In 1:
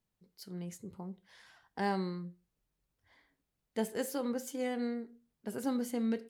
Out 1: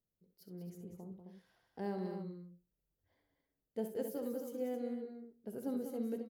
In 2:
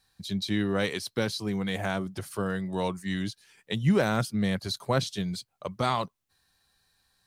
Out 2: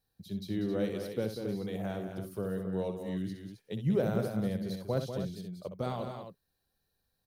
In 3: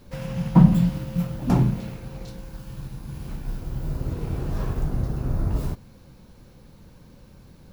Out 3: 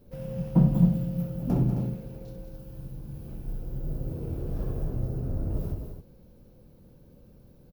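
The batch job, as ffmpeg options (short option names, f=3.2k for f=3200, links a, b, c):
-af "equalizer=f=500:t=o:w=1:g=5,equalizer=f=1k:t=o:w=1:g=-8,equalizer=f=2k:t=o:w=1:g=-8,equalizer=f=4k:t=o:w=1:g=-6,equalizer=f=8k:t=o:w=1:g=-12,equalizer=f=16k:t=o:w=1:g=5,aecho=1:1:64.14|192.4|265.3:0.355|0.398|0.355,volume=-6.5dB"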